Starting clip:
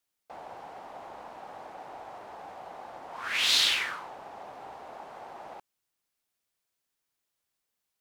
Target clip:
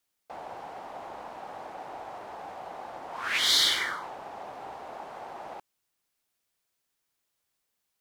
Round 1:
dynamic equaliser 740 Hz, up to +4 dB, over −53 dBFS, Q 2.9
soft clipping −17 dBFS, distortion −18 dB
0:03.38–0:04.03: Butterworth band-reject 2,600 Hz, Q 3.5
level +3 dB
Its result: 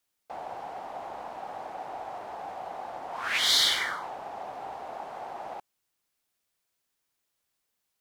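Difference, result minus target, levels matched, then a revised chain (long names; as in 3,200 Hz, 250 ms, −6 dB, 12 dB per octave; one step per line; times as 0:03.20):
1,000 Hz band +6.5 dB
dynamic equaliser 340 Hz, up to +4 dB, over −53 dBFS, Q 2.9
soft clipping −17 dBFS, distortion −18 dB
0:03.38–0:04.03: Butterworth band-reject 2,600 Hz, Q 3.5
level +3 dB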